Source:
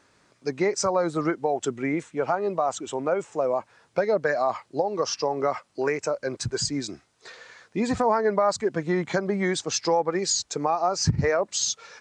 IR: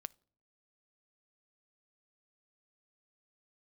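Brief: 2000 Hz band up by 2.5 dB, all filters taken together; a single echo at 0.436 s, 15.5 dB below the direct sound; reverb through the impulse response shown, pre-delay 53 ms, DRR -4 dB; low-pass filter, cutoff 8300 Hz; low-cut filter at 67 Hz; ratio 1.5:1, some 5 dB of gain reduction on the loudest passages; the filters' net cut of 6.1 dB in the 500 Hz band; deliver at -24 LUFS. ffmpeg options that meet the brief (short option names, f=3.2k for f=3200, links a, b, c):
-filter_complex "[0:a]highpass=67,lowpass=8.3k,equalizer=f=500:t=o:g=-8,equalizer=f=2k:t=o:g=3.5,acompressor=threshold=-31dB:ratio=1.5,aecho=1:1:436:0.168,asplit=2[a][b];[1:a]atrim=start_sample=2205,adelay=53[c];[b][c]afir=irnorm=-1:irlink=0,volume=8dB[d];[a][d]amix=inputs=2:normalize=0,volume=2dB"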